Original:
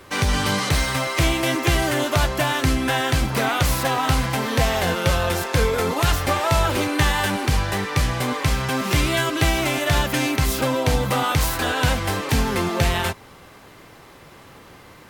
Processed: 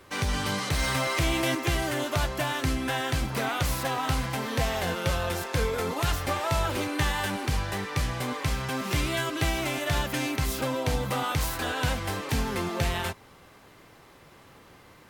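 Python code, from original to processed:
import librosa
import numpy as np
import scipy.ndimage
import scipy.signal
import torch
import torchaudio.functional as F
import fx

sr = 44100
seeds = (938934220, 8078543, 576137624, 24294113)

y = fx.env_flatten(x, sr, amount_pct=50, at=(0.79, 1.55))
y = y * 10.0 ** (-7.5 / 20.0)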